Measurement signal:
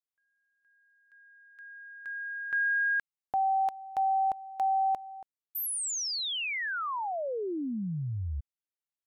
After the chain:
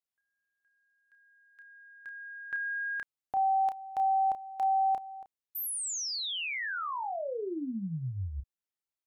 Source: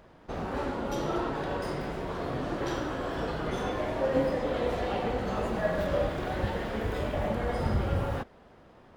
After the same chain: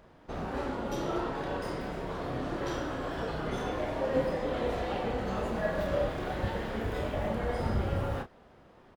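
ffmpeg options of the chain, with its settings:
-filter_complex "[0:a]asplit=2[a][b];[b]adelay=31,volume=-8dB[c];[a][c]amix=inputs=2:normalize=0,volume=-2.5dB"

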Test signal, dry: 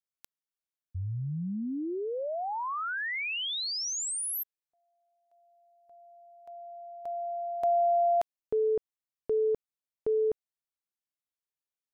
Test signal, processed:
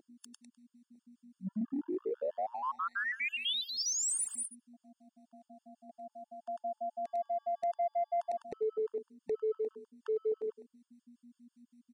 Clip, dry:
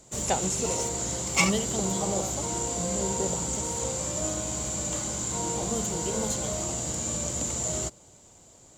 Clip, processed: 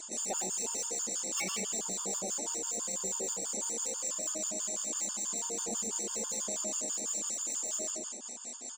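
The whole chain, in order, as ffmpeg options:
-filter_complex "[0:a]aemphasis=mode=production:type=75kf,aecho=1:1:101|202|303:0.562|0.146|0.038,aeval=exprs='val(0)+0.00355*(sin(2*PI*60*n/s)+sin(2*PI*2*60*n/s)/2+sin(2*PI*3*60*n/s)/3+sin(2*PI*4*60*n/s)/4+sin(2*PI*5*60*n/s)/5)':c=same,afftfilt=real='re*between(b*sr/4096,190,10000)':imag='im*between(b*sr/4096,190,10000)':win_size=4096:overlap=0.75,bandreject=f=50:t=h:w=6,bandreject=f=100:t=h:w=6,bandreject=f=150:t=h:w=6,bandreject=f=200:t=h:w=6,bandreject=f=250:t=h:w=6,bandreject=f=300:t=h:w=6,bandreject=f=350:t=h:w=6,bandreject=f=400:t=h:w=6,bandreject=f=450:t=h:w=6,asplit=2[a][b];[b]adynamicsmooth=sensitivity=6:basefreq=7.5k,volume=1dB[c];[a][c]amix=inputs=2:normalize=0,acrossover=split=790[d][e];[d]aeval=exprs='val(0)*(1-0.5/2+0.5/2*cos(2*PI*5.2*n/s))':c=same[f];[e]aeval=exprs='val(0)*(1-0.5/2-0.5/2*cos(2*PI*5.2*n/s))':c=same[g];[f][g]amix=inputs=2:normalize=0,asoftclip=type=tanh:threshold=-10dB,acompressor=threshold=-34dB:ratio=5:attack=0.38:release=21:knee=1:detection=rms,afftfilt=real='re*gt(sin(2*PI*6.1*pts/sr)*(1-2*mod(floor(b*sr/1024/900),2)),0)':imag='im*gt(sin(2*PI*6.1*pts/sr)*(1-2*mod(floor(b*sr/1024/900),2)),0)':win_size=1024:overlap=0.75,volume=3dB"

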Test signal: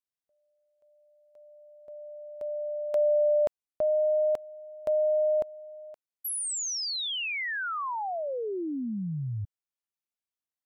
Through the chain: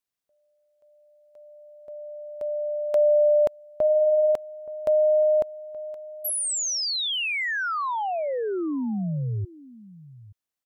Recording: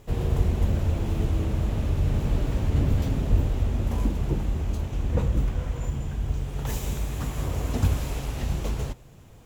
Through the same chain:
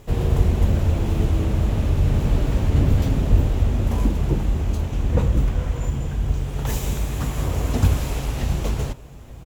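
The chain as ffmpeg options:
-filter_complex "[0:a]asplit=2[a][b];[b]adelay=874.6,volume=-19dB,highshelf=f=4k:g=-19.7[c];[a][c]amix=inputs=2:normalize=0,volume=5dB"

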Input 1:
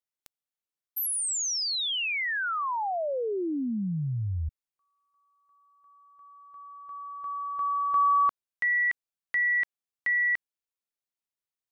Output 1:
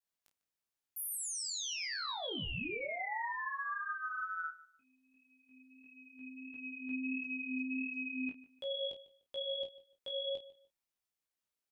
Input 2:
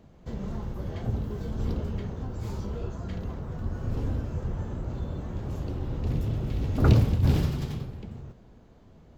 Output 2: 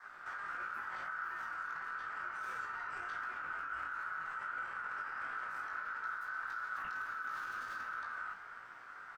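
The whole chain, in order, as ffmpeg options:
-filter_complex "[0:a]adynamicequalizer=threshold=0.00708:dfrequency=1300:dqfactor=1.4:tfrequency=1300:tqfactor=1.4:attack=5:release=100:ratio=0.375:range=1.5:mode=boostabove:tftype=bell,acompressor=threshold=-33dB:ratio=20:attack=0.13:release=103:knee=1:detection=rms,alimiter=level_in=14dB:limit=-24dB:level=0:latency=1:release=28,volume=-14dB,aeval=exprs='val(0)*sin(2*PI*1400*n/s)':c=same,flanger=delay=16.5:depth=3.4:speed=1.5,asplit=2[a][b];[b]adelay=31,volume=-9dB[c];[a][c]amix=inputs=2:normalize=0,asplit=2[d][e];[e]adelay=149,lowpass=f=4.5k:p=1,volume=-18dB,asplit=2[f][g];[g]adelay=149,lowpass=f=4.5k:p=1,volume=0.28[h];[d][f][h]amix=inputs=3:normalize=0,volume=7dB"

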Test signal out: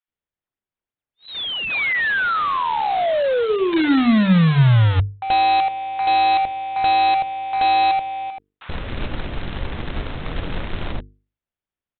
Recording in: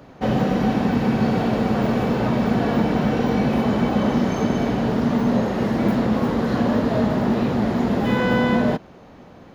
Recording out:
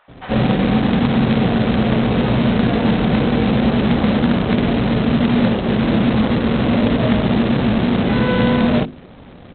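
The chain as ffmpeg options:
-filter_complex "[0:a]lowshelf=f=130:g=7.5,acrossover=split=930[a][b];[a]adelay=80[c];[c][b]amix=inputs=2:normalize=0,acrossover=split=2900[d][e];[e]acompressor=threshold=-29dB:ratio=4:attack=1:release=60[f];[d][f]amix=inputs=2:normalize=0,asplit=2[g][h];[h]asoftclip=type=hard:threshold=-18.5dB,volume=-8.5dB[i];[g][i]amix=inputs=2:normalize=0,highshelf=f=2.2k:g=-10.5,aresample=8000,acrusher=bits=2:mode=log:mix=0:aa=0.000001,aresample=44100,bandreject=f=50:t=h:w=6,bandreject=f=100:t=h:w=6,bandreject=f=150:t=h:w=6,bandreject=f=200:t=h:w=6,bandreject=f=250:t=h:w=6,bandreject=f=300:t=h:w=6,bandreject=f=350:t=h:w=6,bandreject=f=400:t=h:w=6,bandreject=f=450:t=h:w=6,volume=1dB"

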